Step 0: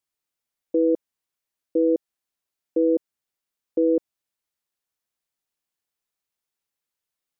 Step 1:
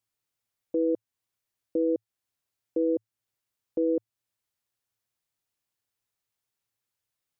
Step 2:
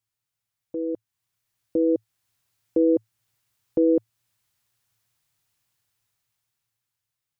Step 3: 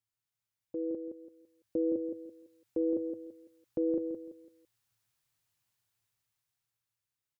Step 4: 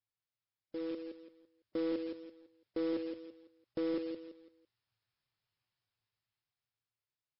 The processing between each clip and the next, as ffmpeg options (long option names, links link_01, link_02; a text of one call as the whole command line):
ffmpeg -i in.wav -af "equalizer=frequency=110:width_type=o:width=0.36:gain=14,alimiter=limit=-18.5dB:level=0:latency=1:release=333" out.wav
ffmpeg -i in.wav -af "equalizer=frequency=125:width_type=o:width=1:gain=7,equalizer=frequency=250:width_type=o:width=1:gain=-4,equalizer=frequency=500:width_type=o:width=1:gain=-5,dynaudnorm=framelen=340:gausssize=9:maxgain=11dB" out.wav
ffmpeg -i in.wav -af "alimiter=limit=-16.5dB:level=0:latency=1:release=13,aecho=1:1:168|336|504|672:0.473|0.151|0.0485|0.0155,volume=-7dB" out.wav
ffmpeg -i in.wav -af "acrusher=bits=3:mode=log:mix=0:aa=0.000001,volume=-3.5dB" -ar 12000 -c:a libmp3lame -b:a 24k out.mp3